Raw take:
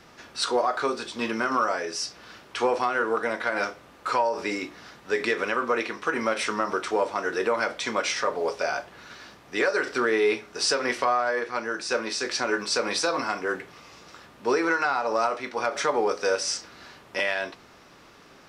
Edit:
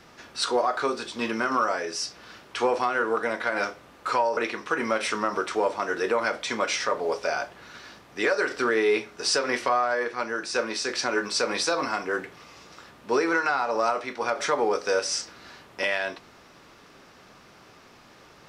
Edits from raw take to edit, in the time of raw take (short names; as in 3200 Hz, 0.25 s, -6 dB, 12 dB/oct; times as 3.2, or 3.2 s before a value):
4.37–5.73 cut